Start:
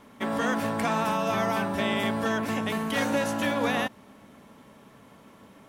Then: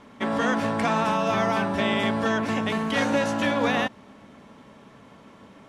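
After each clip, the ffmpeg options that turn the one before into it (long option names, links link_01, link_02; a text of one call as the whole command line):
ffmpeg -i in.wav -af "lowpass=6700,volume=3dB" out.wav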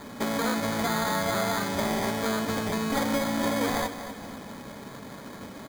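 ffmpeg -i in.wav -af "acompressor=threshold=-42dB:ratio=2,acrusher=samples=16:mix=1:aa=0.000001,aecho=1:1:241|482|723|964|1205:0.282|0.13|0.0596|0.0274|0.0126,volume=7.5dB" out.wav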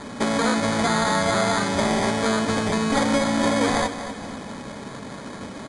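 ffmpeg -i in.wav -af "aresample=22050,aresample=44100,volume=6dB" out.wav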